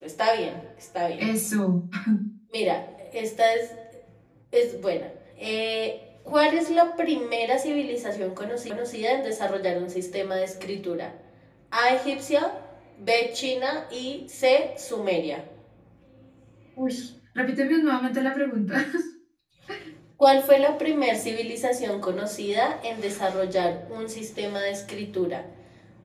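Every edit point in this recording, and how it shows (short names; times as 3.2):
8.7 repeat of the last 0.28 s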